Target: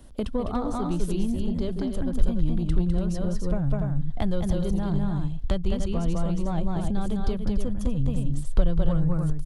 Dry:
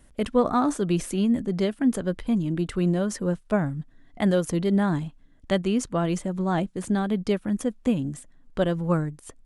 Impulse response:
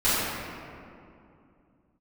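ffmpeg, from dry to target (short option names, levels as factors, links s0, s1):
-filter_complex "[0:a]equalizer=f=2000:t=o:w=1:g=-10,equalizer=f=4000:t=o:w=1:g=4,equalizer=f=8000:t=o:w=1:g=-7,asplit=2[s0][s1];[s1]aecho=0:1:204.1|288.6:0.708|0.398[s2];[s0][s2]amix=inputs=2:normalize=0,acrossover=split=130[s3][s4];[s4]acompressor=threshold=0.0178:ratio=4[s5];[s3][s5]amix=inputs=2:normalize=0,aeval=exprs='0.133*sin(PI/2*1.41*val(0)/0.133)':c=same,asubboost=boost=9:cutoff=76"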